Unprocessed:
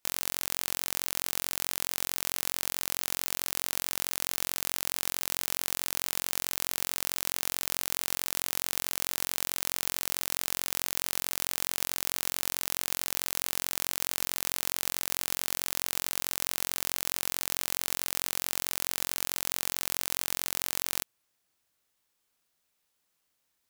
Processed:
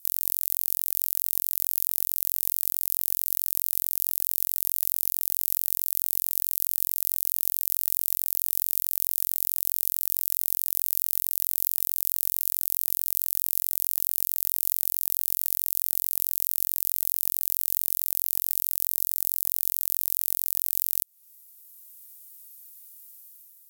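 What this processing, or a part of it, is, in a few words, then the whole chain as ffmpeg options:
FM broadcast chain: -filter_complex "[0:a]highpass=frequency=54:poles=1,dynaudnorm=framelen=210:gausssize=5:maxgain=6.5dB,acrossover=split=790|6900[link_01][link_02][link_03];[link_01]acompressor=threshold=-58dB:ratio=4[link_04];[link_02]acompressor=threshold=-43dB:ratio=4[link_05];[link_03]acompressor=threshold=-43dB:ratio=4[link_06];[link_04][link_05][link_06]amix=inputs=3:normalize=0,aemphasis=mode=production:type=75fm,alimiter=limit=-4.5dB:level=0:latency=1:release=88,asoftclip=type=hard:threshold=-6dB,lowpass=frequency=15000:width=0.5412,lowpass=frequency=15000:width=1.3066,aemphasis=mode=production:type=75fm,asettb=1/sr,asplit=3[link_07][link_08][link_09];[link_07]atrim=end=18.874[link_10];[link_08]atrim=start=18.87:end=19.51,asetpts=PTS-STARTPTS,afade=type=in:duration=0.004:curve=qsin,afade=type=out:start_time=0.636:duration=0.004:curve=qsin,equalizer=frequency=2500:width_type=o:width=0.49:gain=-8[link_11];[link_09]atrim=start=19.506[link_12];[link_10][link_11]acrossfade=duration=0.004:curve1=hsin:curve2=qsin[link_13];[link_13][link_12]acrossfade=duration=0.004:curve1=qsin:curve2=hsin,volume=-7dB"

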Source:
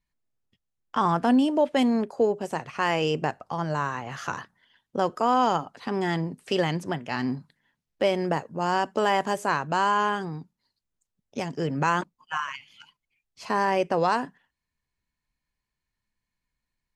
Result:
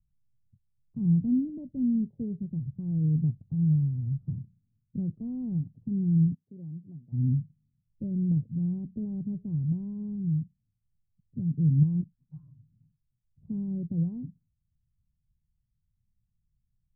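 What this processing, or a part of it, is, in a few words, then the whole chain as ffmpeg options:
the neighbour's flat through the wall: -filter_complex "[0:a]lowpass=frequency=170:width=0.5412,lowpass=frequency=170:width=1.3066,equalizer=frequency=110:width_type=o:width=0.99:gain=5.5,asplit=3[link_01][link_02][link_03];[link_01]afade=type=out:start_time=6.33:duration=0.02[link_04];[link_02]highpass=frequency=1200:poles=1,afade=type=in:start_time=6.33:duration=0.02,afade=type=out:start_time=7.12:duration=0.02[link_05];[link_03]afade=type=in:start_time=7.12:duration=0.02[link_06];[link_04][link_05][link_06]amix=inputs=3:normalize=0,volume=8.5dB"

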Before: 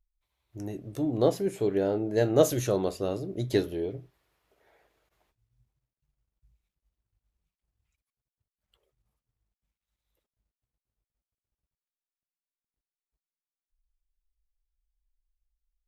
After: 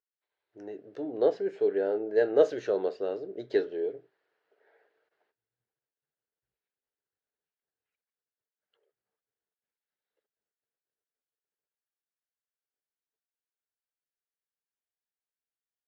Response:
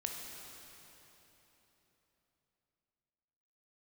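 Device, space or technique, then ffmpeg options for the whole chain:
phone earpiece: -af "highpass=390,equalizer=frequency=440:width_type=q:width=4:gain=9,equalizer=frequency=1100:width_type=q:width=4:gain=-6,equalizer=frequency=1600:width_type=q:width=4:gain=7,equalizer=frequency=2400:width_type=q:width=4:gain=-5,equalizer=frequency=3500:width_type=q:width=4:gain=-6,lowpass=frequency=4100:width=0.5412,lowpass=frequency=4100:width=1.3066,volume=-3dB"

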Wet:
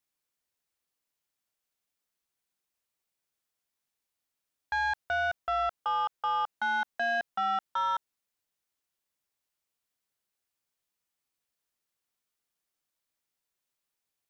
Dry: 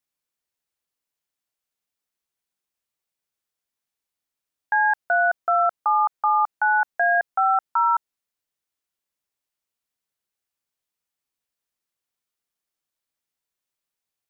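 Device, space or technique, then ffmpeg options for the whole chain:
soft clipper into limiter: -af "asoftclip=type=tanh:threshold=-18dB,alimiter=level_in=0.5dB:limit=-24dB:level=0:latency=1:release=28,volume=-0.5dB"

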